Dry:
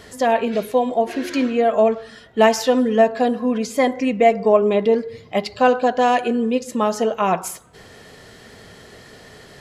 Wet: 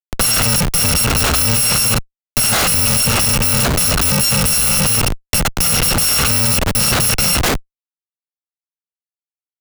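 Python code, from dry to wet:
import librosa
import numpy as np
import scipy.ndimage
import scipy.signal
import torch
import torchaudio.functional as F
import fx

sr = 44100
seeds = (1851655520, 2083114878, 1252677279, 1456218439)

y = fx.bit_reversed(x, sr, seeds[0], block=128)
y = fx.echo_wet_bandpass(y, sr, ms=219, feedback_pct=60, hz=1100.0, wet_db=-15.0)
y = fx.schmitt(y, sr, flips_db=-27.0)
y = fx.band_squash(y, sr, depth_pct=40)
y = y * librosa.db_to_amplitude(5.0)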